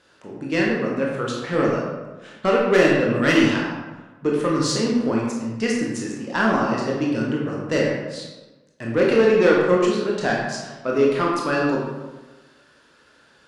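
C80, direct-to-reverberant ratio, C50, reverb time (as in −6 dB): 3.0 dB, −3.5 dB, 1.0 dB, 1.2 s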